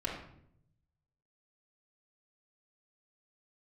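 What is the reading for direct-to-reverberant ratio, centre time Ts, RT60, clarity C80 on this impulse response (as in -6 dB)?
-4.5 dB, 38 ms, 0.70 s, 7.0 dB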